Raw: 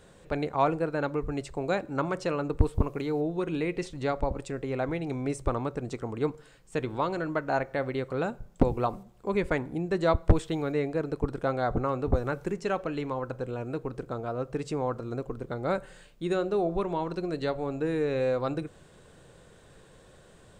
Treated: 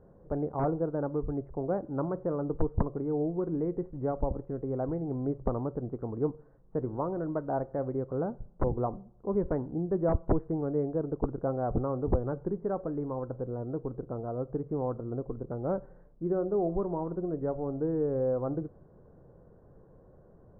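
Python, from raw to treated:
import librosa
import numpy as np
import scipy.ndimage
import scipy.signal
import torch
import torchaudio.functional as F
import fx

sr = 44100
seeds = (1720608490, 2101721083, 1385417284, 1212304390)

y = (np.mod(10.0 ** (14.5 / 20.0) * x + 1.0, 2.0) - 1.0) / 10.0 ** (14.5 / 20.0)
y = scipy.ndimage.gaussian_filter1d(y, 8.9, mode='constant')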